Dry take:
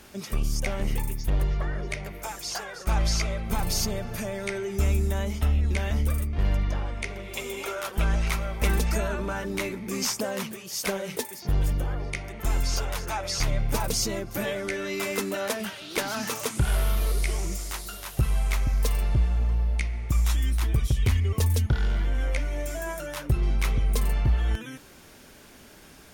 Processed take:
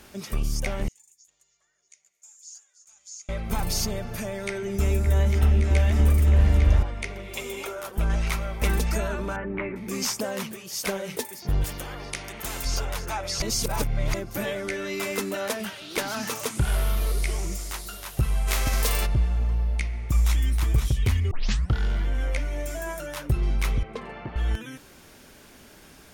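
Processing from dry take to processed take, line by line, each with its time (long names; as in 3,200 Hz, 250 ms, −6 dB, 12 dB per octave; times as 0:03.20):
0:00.88–0:03.29: resonant band-pass 6,900 Hz, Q 12
0:04.34–0:06.83: echo whose low-pass opens from repeat to repeat 284 ms, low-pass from 400 Hz, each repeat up 2 octaves, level 0 dB
0:07.67–0:08.10: parametric band 3,000 Hz −7 dB 2.8 octaves
0:09.36–0:09.76: Butterworth low-pass 2,400 Hz
0:11.64–0:12.65: every bin compressed towards the loudest bin 2 to 1
0:13.42–0:14.14: reverse
0:18.47–0:19.05: spectral envelope flattened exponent 0.6
0:19.61–0:20.36: delay throw 520 ms, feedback 10%, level −7 dB
0:21.31: tape start 0.43 s
0:23.83–0:24.36: band-pass filter 240–2,300 Hz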